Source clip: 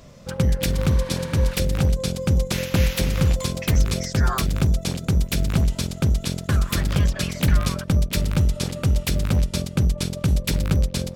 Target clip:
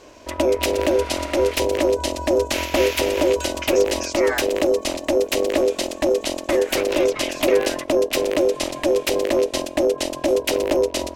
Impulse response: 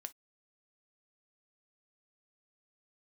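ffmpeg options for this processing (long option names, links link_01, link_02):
-filter_complex "[0:a]aeval=exprs='val(0)*sin(2*PI*450*n/s)':channel_layout=same,equalizer=frequency=160:width_type=o:width=0.67:gain=-12,equalizer=frequency=2500:width_type=o:width=0.67:gain=7,equalizer=frequency=6300:width_type=o:width=0.67:gain=3,acontrast=29,asplit=2[link_01][link_02];[1:a]atrim=start_sample=2205[link_03];[link_02][link_03]afir=irnorm=-1:irlink=0,volume=-7.5dB[link_04];[link_01][link_04]amix=inputs=2:normalize=0,volume=-3.5dB"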